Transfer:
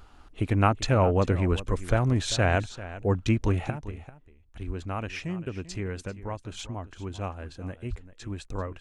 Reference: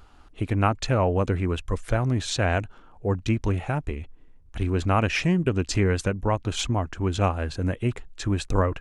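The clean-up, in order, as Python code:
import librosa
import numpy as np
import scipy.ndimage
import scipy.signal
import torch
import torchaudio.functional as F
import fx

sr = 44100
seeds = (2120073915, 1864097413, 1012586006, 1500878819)

y = fx.highpass(x, sr, hz=140.0, slope=24, at=(1.49, 1.61), fade=0.02)
y = fx.highpass(y, sr, hz=140.0, slope=24, at=(4.66, 4.78), fade=0.02)
y = fx.highpass(y, sr, hz=140.0, slope=24, at=(7.89, 8.01), fade=0.02)
y = fx.fix_echo_inverse(y, sr, delay_ms=392, level_db=-15.5)
y = fx.gain(y, sr, db=fx.steps((0.0, 0.0), (3.7, 11.0)))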